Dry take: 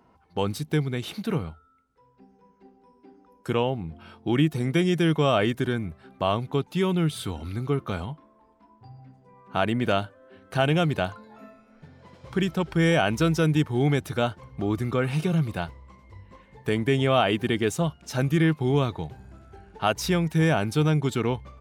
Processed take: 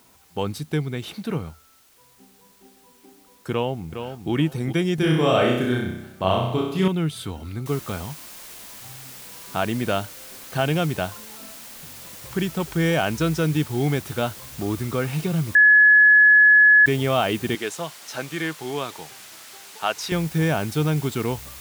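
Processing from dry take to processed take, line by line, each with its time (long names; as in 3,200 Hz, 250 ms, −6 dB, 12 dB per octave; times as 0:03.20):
0:03.51–0:04.31: delay throw 410 ms, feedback 25%, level −8 dB
0:04.95–0:06.88: flutter between parallel walls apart 5.5 metres, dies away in 0.79 s
0:07.66: noise floor change −57 dB −41 dB
0:15.55–0:16.86: beep over 1,700 Hz −9.5 dBFS
0:17.55–0:20.12: meter weighting curve A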